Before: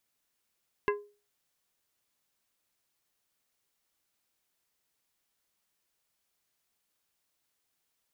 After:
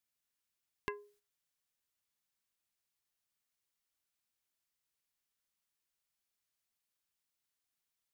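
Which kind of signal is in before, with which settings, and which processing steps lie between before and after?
glass hit plate, lowest mode 412 Hz, decay 0.35 s, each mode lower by 3 dB, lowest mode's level -23 dB
gate -60 dBFS, range -8 dB; peaking EQ 490 Hz -5.5 dB 2.2 oct; compression 2.5:1, threshold -38 dBFS

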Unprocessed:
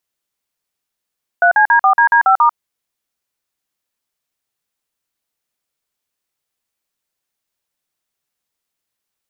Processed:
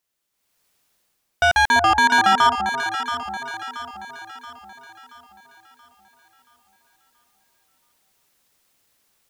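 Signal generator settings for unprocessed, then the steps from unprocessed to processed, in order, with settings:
DTMF "3CD4DD5*", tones 94 ms, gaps 46 ms, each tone -10 dBFS
level rider gain up to 13 dB; saturation -13 dBFS; echo whose repeats swap between lows and highs 339 ms, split 900 Hz, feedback 68%, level -5 dB

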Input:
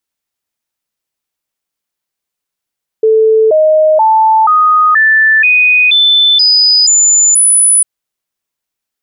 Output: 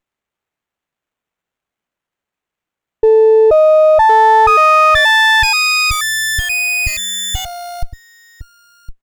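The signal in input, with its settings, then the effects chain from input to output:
stepped sine 440 Hz up, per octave 2, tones 10, 0.48 s, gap 0.00 s -4.5 dBFS
on a send: delay 1061 ms -11 dB; on the sum: sliding maximum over 9 samples

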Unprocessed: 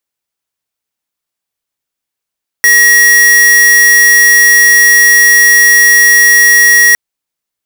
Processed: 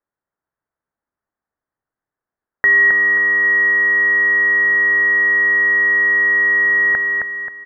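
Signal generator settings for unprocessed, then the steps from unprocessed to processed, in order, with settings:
tone square 1.9 kHz -5 dBFS 4.31 s
steep low-pass 1.8 kHz 48 dB/octave; on a send: feedback delay 266 ms, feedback 40%, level -4 dB

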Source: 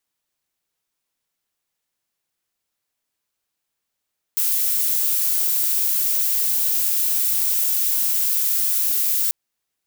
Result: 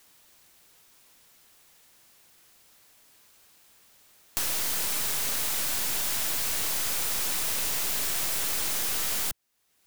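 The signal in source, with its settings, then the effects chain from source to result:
noise violet, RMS -20 dBFS 4.94 s
tracing distortion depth 0.067 ms; saturation -25 dBFS; three bands compressed up and down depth 70%

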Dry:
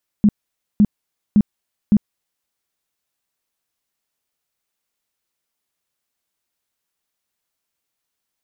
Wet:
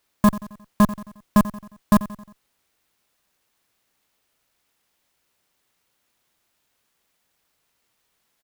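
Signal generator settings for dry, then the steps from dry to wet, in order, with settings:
tone bursts 208 Hz, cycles 10, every 0.56 s, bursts 4, -8 dBFS
Chebyshev shaper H 5 -8 dB, 8 -18 dB, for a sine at -7.5 dBFS; feedback delay 89 ms, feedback 49%, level -16 dB; sampling jitter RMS 0.04 ms

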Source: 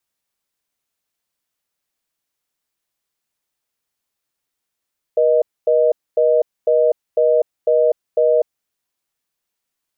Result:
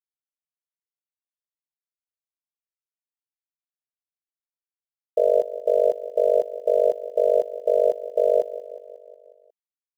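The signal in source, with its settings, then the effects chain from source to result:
call progress tone reorder tone, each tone -14 dBFS 3.37 s
small samples zeroed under -35.5 dBFS; feedback delay 181 ms, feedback 59%, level -15 dB; AM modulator 50 Hz, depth 90%

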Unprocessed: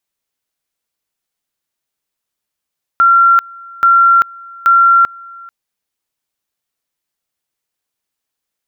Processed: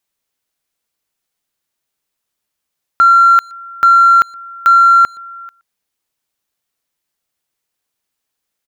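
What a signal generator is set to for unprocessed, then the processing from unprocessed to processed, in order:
two-level tone 1.37 kHz -5 dBFS, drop 25.5 dB, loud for 0.39 s, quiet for 0.44 s, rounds 3
in parallel at -8.5 dB: saturation -15.5 dBFS; on the sum: speakerphone echo 120 ms, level -23 dB

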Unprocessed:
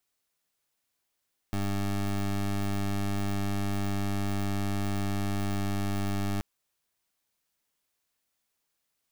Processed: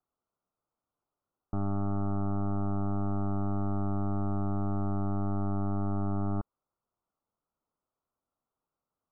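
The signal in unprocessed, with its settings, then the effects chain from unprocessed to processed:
pulse 99.8 Hz, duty 20% -29 dBFS 4.88 s
steep low-pass 1.4 kHz 96 dB/octave

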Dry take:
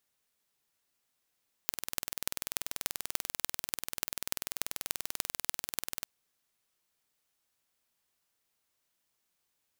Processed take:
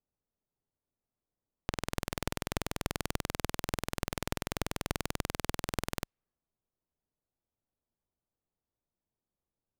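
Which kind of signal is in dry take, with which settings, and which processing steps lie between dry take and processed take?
pulse train 20.5 per s, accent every 6, -1.5 dBFS 4.35 s
level-controlled noise filter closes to 760 Hz, open at -49.5 dBFS; tilt EQ -2.5 dB/octave; waveshaping leveller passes 3

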